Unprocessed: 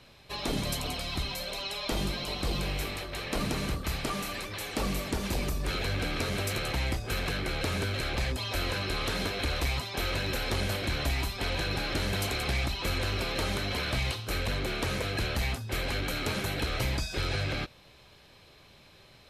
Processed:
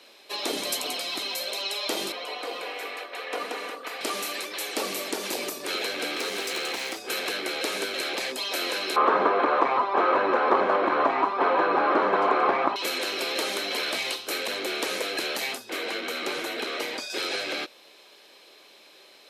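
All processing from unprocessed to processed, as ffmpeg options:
ffmpeg -i in.wav -filter_complex "[0:a]asettb=1/sr,asplit=3[link_01][link_02][link_03];[link_01]atrim=end=2.124[link_04];[link_02]atrim=start=2.12:end=4.01,asetpts=PTS-STARTPTS,afade=type=in:duration=0.004:curve=qsin,afade=type=out:start_time=1.886:duration=0.004:curve=qsin,acrossover=split=370 2700:gain=0.112 1 0.2[link_05][link_06][link_07];[link_05][link_06][link_07]amix=inputs=3:normalize=0,aecho=1:1:4.1:0.58,atrim=end_sample=83349[link_08];[link_03]atrim=start=4.006[link_09];[link_04][link_08]acrossfade=duration=0.004:curve1=hsin:curve2=qsin[link_10];[link_10][link_09]acrossfade=duration=0.004:curve1=qsin:curve2=hsin,asettb=1/sr,asplit=3[link_11][link_12][link_13];[link_11]atrim=end=6.164[link_14];[link_12]atrim=start=6.16:end=7.09,asetpts=PTS-STARTPTS,afade=type=in:duration=0.004:curve=qsin,afade=type=out:start_time=0.926:duration=0.004:curve=qsin,acrossover=split=7700[link_15][link_16];[link_16]acompressor=threshold=-50dB:ratio=4:attack=1:release=60[link_17];[link_15][link_17]amix=inputs=2:normalize=0,bandreject=frequency=610:width=8.2,aeval=exprs='0.0473*(abs(mod(val(0)/0.0473+3,4)-2)-1)':channel_layout=same[link_18];[link_13]atrim=start=7.086[link_19];[link_14][link_18]acrossfade=duration=0.004:curve1=hsin:curve2=qsin[link_20];[link_20][link_19]acrossfade=duration=0.004:curve1=qsin:curve2=hsin,asettb=1/sr,asplit=3[link_21][link_22][link_23];[link_21]atrim=end=8.964[link_24];[link_22]atrim=start=8.96:end=12.76,asetpts=PTS-STARTPTS,afade=type=in:duration=0.004:curve=qsin,afade=type=out:start_time=3.796:duration=0.004:curve=qsin,lowpass=frequency=1100:width_type=q:width=4.3,acontrast=80[link_25];[link_23]atrim=start=12.756[link_26];[link_24][link_25]acrossfade=duration=0.004:curve1=hsin:curve2=qsin[link_27];[link_27][link_26]acrossfade=duration=0.004:curve1=qsin:curve2=hsin,asettb=1/sr,asplit=3[link_28][link_29][link_30];[link_28]atrim=end=15.704[link_31];[link_29]atrim=start=15.7:end=17.1,asetpts=PTS-STARTPTS,afade=type=in:duration=0.004:curve=qsin,afade=type=out:start_time=1.396:duration=0.004:curve=qsin,aemphasis=mode=reproduction:type=cd,afreqshift=-49[link_32];[link_30]atrim=start=17.096[link_33];[link_31][link_32]acrossfade=duration=0.004:curve1=hsin:curve2=qsin[link_34];[link_34][link_33]acrossfade=duration=0.004:curve1=qsin:curve2=hsin,highpass=frequency=330:width=0.5412,highpass=frequency=330:width=1.3066,equalizer=frequency=1100:width=0.49:gain=-4.5,volume=7dB" out.wav

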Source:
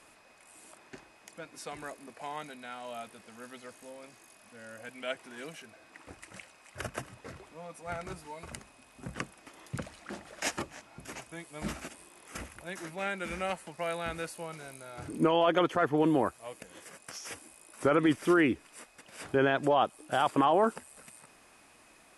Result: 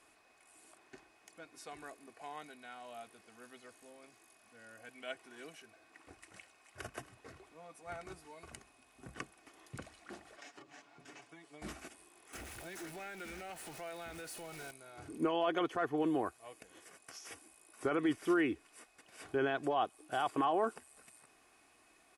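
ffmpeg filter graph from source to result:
ffmpeg -i in.wav -filter_complex "[0:a]asettb=1/sr,asplit=3[link_01][link_02][link_03];[link_01]atrim=end=10.364[link_04];[link_02]atrim=start=10.36:end=11.62,asetpts=PTS-STARTPTS,afade=type=in:duration=0.004:curve=qsin,afade=type=out:start_time=1.256:duration=0.004:curve=qsin,acompressor=threshold=-42dB:ratio=16:attack=3.2:release=140:knee=1:detection=peak,highpass=150,lowpass=6300,aecho=1:1:7:0.6,atrim=end_sample=55566[link_05];[link_03]atrim=start=11.616[link_06];[link_04][link_05]acrossfade=duration=0.004:curve1=hsin:curve2=qsin[link_07];[link_07][link_06]acrossfade=duration=0.004:curve1=qsin:curve2=hsin,asettb=1/sr,asplit=3[link_08][link_09][link_10];[link_08]atrim=end=12.334[link_11];[link_09]atrim=start=12.33:end=14.71,asetpts=PTS-STARTPTS,afade=type=in:duration=0.004:curve=qsin,afade=type=out:start_time=2.376:duration=0.004:curve=qsin,aeval=exprs='val(0)+0.5*0.0133*sgn(val(0))':channel_layout=same,bandreject=frequency=1100:width=9.3,acompressor=threshold=-36dB:ratio=2.5:attack=3.2:release=140:knee=1:detection=peak[link_12];[link_10]atrim=start=14.706[link_13];[link_11][link_12]acrossfade=duration=0.004:curve1=hsin:curve2=qsin[link_14];[link_14][link_13]acrossfade=duration=0.004:curve1=qsin:curve2=hsin,lowshelf=frequency=71:gain=-5.5,aecho=1:1:2.7:0.38,volume=-8dB" out.wav

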